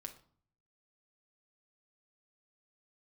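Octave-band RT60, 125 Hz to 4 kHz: 0.90, 0.70, 0.50, 0.50, 0.35, 0.35 seconds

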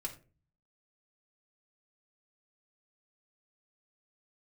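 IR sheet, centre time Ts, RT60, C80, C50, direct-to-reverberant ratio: 10 ms, 0.35 s, 17.5 dB, 12.5 dB, −1.0 dB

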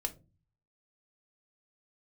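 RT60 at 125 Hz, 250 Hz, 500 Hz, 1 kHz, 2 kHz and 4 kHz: 0.75, 0.55, 0.35, 0.25, 0.20, 0.20 seconds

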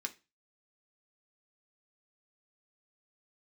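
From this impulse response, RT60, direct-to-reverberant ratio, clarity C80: 0.25 s, 3.5 dB, 25.0 dB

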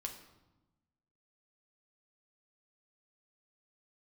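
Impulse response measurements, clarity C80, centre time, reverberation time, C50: 11.0 dB, 19 ms, 1.0 s, 9.0 dB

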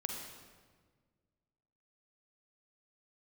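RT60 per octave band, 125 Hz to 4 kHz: 2.2, 2.0, 1.7, 1.4, 1.3, 1.1 seconds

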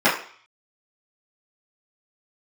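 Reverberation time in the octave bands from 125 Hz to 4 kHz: 0.35, 0.40, 0.45, 0.55, 0.55, 0.55 seconds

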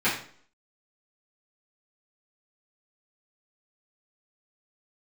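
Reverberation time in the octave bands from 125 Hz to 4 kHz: 0.50, 0.55, 0.55, 0.50, 0.45, 0.45 seconds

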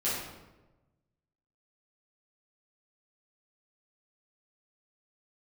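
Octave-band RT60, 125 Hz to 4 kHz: 1.6, 1.3, 1.2, 1.0, 0.85, 0.70 seconds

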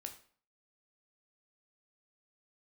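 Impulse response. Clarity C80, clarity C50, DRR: 15.0 dB, 11.0 dB, 4.5 dB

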